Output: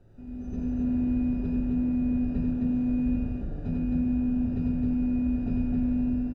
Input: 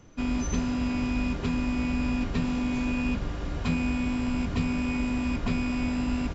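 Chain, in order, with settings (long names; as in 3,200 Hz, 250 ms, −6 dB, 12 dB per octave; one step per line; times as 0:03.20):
automatic gain control gain up to 12.5 dB
background noise pink −40 dBFS
moving average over 41 samples
tuned comb filter 110 Hz, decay 1.1 s, harmonics all, mix 70%
loudspeakers that aren't time-aligned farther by 32 metres −3 dB, 90 metres −2 dB
level −5.5 dB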